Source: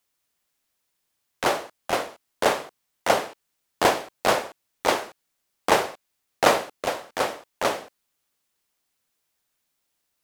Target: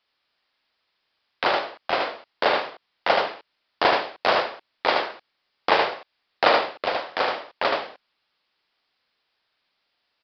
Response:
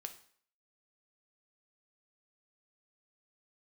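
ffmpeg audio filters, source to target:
-filter_complex "[0:a]lowshelf=frequency=330:gain=-11.5,aecho=1:1:76:0.668,asplit=2[link_01][link_02];[link_02]acompressor=threshold=-34dB:ratio=6,volume=1.5dB[link_03];[link_01][link_03]amix=inputs=2:normalize=0,aresample=11025,aresample=44100"

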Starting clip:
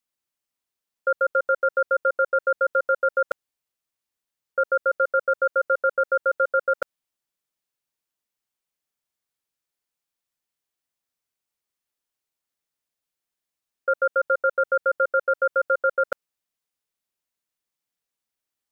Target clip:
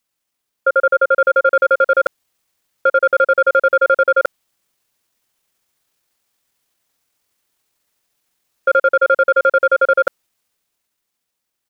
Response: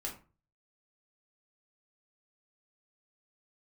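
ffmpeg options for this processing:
-filter_complex "[0:a]dynaudnorm=framelen=120:gausssize=31:maxgain=7dB,atempo=1.6,asplit=2[link_01][link_02];[link_02]acontrast=45,volume=-2.5dB[link_03];[link_01][link_03]amix=inputs=2:normalize=0,alimiter=limit=-7.5dB:level=0:latency=1:release=30,volume=2dB"

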